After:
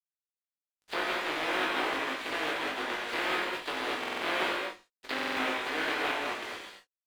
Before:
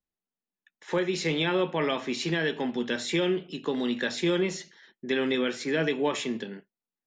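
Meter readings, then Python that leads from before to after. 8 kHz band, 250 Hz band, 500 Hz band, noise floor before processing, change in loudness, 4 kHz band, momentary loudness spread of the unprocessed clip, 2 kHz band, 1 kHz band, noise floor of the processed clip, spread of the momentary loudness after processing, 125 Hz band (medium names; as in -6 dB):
-6.0 dB, -11.0 dB, -8.0 dB, under -85 dBFS, -3.0 dB, -1.5 dB, 7 LU, +2.0 dB, +4.0 dB, under -85 dBFS, 8 LU, -20.0 dB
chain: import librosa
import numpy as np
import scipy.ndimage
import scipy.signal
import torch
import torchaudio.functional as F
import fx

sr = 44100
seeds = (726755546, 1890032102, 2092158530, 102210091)

y = fx.spec_flatten(x, sr, power=0.14)
y = scipy.signal.sosfilt(scipy.signal.butter(16, 4900.0, 'lowpass', fs=sr, output='sos'), y)
y = fx.env_lowpass_down(y, sr, base_hz=2000.0, full_db=-29.5)
y = scipy.signal.sosfilt(scipy.signal.butter(4, 260.0, 'highpass', fs=sr, output='sos'), y)
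y = np.sign(y) * np.maximum(np.abs(y) - 10.0 ** (-44.5 / 20.0), 0.0)
y = fx.doubler(y, sr, ms=19.0, db=-6.0)
y = fx.rev_gated(y, sr, seeds[0], gate_ms=270, shape='flat', drr_db=-3.0)
y = fx.buffer_glitch(y, sr, at_s=(3.99, 5.14), block=2048, repeats=4)
y = F.gain(torch.from_numpy(y), -1.5).numpy()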